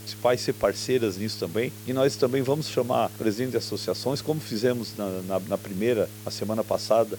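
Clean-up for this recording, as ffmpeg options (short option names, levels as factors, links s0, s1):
-af "bandreject=f=105.5:t=h:w=4,bandreject=f=211:t=h:w=4,bandreject=f=316.5:t=h:w=4,bandreject=f=422:t=h:w=4,afwtdn=0.005"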